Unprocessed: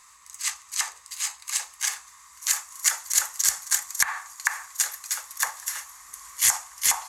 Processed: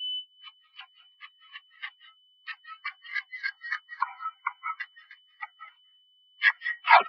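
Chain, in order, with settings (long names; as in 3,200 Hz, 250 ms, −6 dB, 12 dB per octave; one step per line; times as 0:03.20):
turntable brake at the end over 0.33 s
high-pass filter 700 Hz 12 dB per octave
notch filter 1,500 Hz, Q 14
gate on every frequency bin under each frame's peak −10 dB weak
high-shelf EQ 3,600 Hz +4 dB
in parallel at −6.5 dB: soft clipping −18.5 dBFS, distortion −12 dB
on the sum: steady tone 3,000 Hz −37 dBFS
high-frequency loss of the air 260 metres
repeating echo 231 ms, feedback 36%, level −17.5 dB
on a send at −4 dB: convolution reverb RT60 0.40 s, pre-delay 147 ms
on the sum: boost into a limiter +17.5 dB
every bin expanded away from the loudest bin 4 to 1
level −1 dB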